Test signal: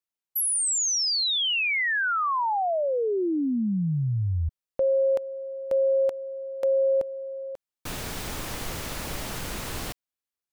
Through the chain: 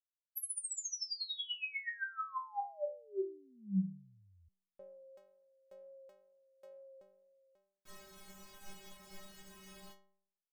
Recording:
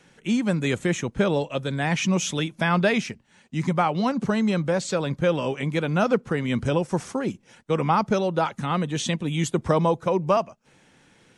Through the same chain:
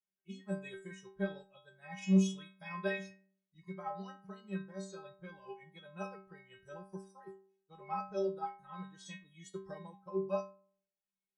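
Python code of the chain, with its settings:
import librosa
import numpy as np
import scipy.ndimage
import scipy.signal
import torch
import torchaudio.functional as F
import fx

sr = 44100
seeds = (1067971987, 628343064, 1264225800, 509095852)

y = fx.noise_reduce_blind(x, sr, reduce_db=18)
y = fx.wow_flutter(y, sr, seeds[0], rate_hz=2.1, depth_cents=17.0)
y = fx.stiff_resonator(y, sr, f0_hz=190.0, decay_s=0.66, stiffness=0.008)
y = fx.upward_expand(y, sr, threshold_db=-53.0, expansion=1.5)
y = F.gain(torch.from_numpy(y), 3.0).numpy()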